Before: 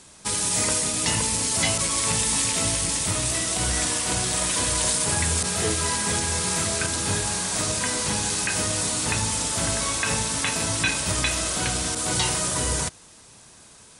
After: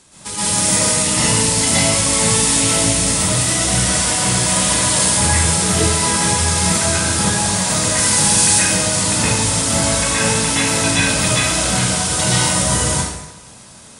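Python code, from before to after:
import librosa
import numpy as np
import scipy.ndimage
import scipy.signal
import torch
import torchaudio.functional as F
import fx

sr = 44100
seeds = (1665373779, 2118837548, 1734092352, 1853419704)

y = fx.high_shelf(x, sr, hz=fx.line((7.83, 8100.0), (8.48, 4600.0)), db=8.5, at=(7.83, 8.48), fade=0.02)
y = fx.rev_plate(y, sr, seeds[0], rt60_s=0.98, hf_ratio=0.8, predelay_ms=105, drr_db=-9.5)
y = y * 10.0 ** (-1.5 / 20.0)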